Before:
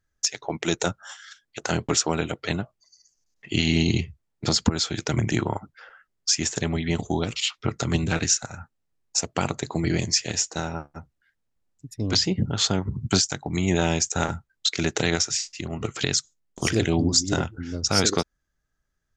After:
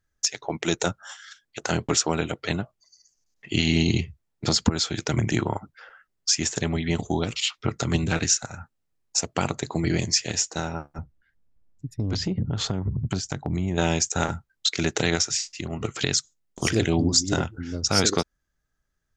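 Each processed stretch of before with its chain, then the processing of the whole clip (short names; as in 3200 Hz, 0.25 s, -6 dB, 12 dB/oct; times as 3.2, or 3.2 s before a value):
10.98–13.78 tilt -2.5 dB/oct + compressor, threshold -22 dBFS
whole clip: dry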